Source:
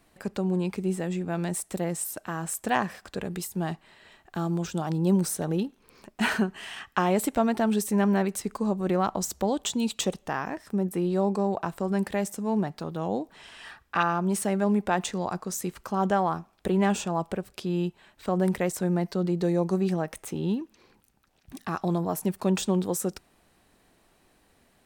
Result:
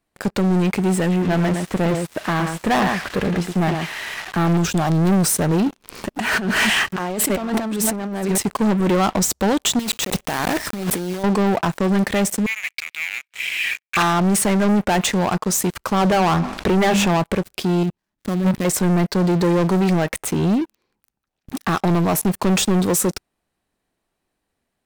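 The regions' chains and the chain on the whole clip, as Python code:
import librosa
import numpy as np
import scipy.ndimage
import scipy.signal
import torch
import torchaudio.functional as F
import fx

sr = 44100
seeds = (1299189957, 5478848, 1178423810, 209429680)

y = fx.chain(x, sr, fx.crossing_spikes(level_db=-22.5),
    fx.lowpass(hz=1900.0, slope=12),
    fx.echo_single(ms=113, db=-8.5), at=(1.11, 4.57))
y = fx.chain(y, sr, fx.reverse_delay(ms=263, wet_db=-12.5),
    fx.over_compress(threshold_db=-35.0, ratio=-1.0), at=(5.66, 8.38))
y = fx.chain(y, sr, fx.block_float(bits=3),
    fx.over_compress(threshold_db=-37.0, ratio=-1.0), at=(9.79, 11.24))
y = fx.chain(y, sr, fx.leveller(passes=3),
    fx.ladder_highpass(hz=2200.0, resonance_pct=80), at=(12.46, 13.97))
y = fx.chain(y, sr, fx.air_absorb(metres=66.0),
    fx.hum_notches(base_hz=50, count=6),
    fx.env_flatten(amount_pct=50), at=(16.0, 17.17))
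y = fx.chain(y, sr, fx.dead_time(dead_ms=0.16),
    fx.low_shelf_res(hz=360.0, db=6.0, q=1.5),
    fx.level_steps(step_db=17), at=(17.83, 18.65))
y = fx.dynamic_eq(y, sr, hz=2200.0, q=2.5, threshold_db=-49.0, ratio=4.0, max_db=5)
y = fx.leveller(y, sr, passes=5)
y = y * librosa.db_to_amplitude(-3.5)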